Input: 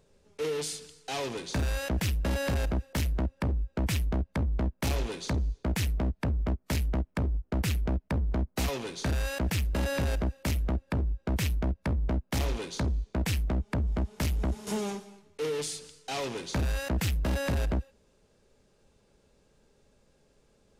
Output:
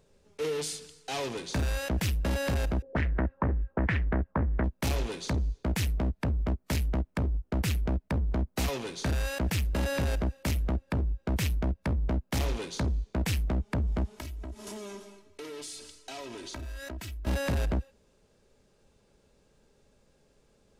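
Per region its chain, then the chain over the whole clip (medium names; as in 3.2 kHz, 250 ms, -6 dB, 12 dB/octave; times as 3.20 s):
2.82–4.64 s: peaking EQ 420 Hz +2.5 dB 1.6 oct + touch-sensitive low-pass 420–1800 Hz up, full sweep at -27 dBFS
14.17–17.27 s: comb 3.1 ms, depth 69% + compression 5:1, threshold -38 dBFS
whole clip: none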